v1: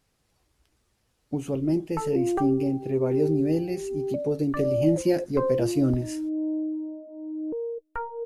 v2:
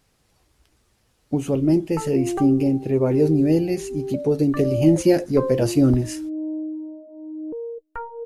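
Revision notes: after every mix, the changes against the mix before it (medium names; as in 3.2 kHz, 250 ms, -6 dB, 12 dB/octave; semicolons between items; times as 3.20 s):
speech +6.5 dB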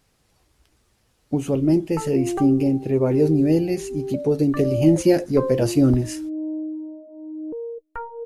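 no change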